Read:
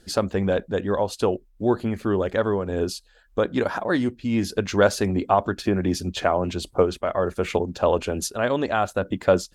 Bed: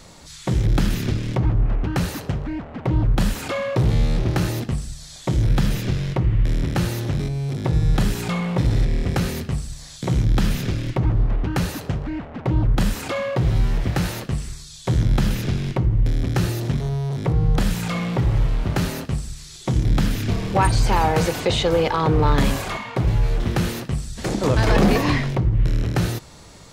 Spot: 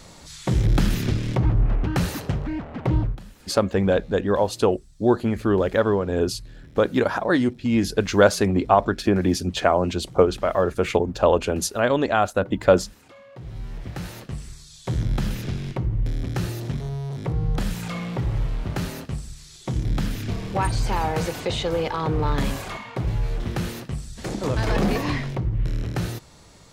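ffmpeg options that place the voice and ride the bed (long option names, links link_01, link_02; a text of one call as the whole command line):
ffmpeg -i stem1.wav -i stem2.wav -filter_complex "[0:a]adelay=3400,volume=2.5dB[link_01];[1:a]volume=17dB,afade=type=out:start_time=2.94:duration=0.25:silence=0.0749894,afade=type=in:start_time=13.28:duration=1.48:silence=0.133352[link_02];[link_01][link_02]amix=inputs=2:normalize=0" out.wav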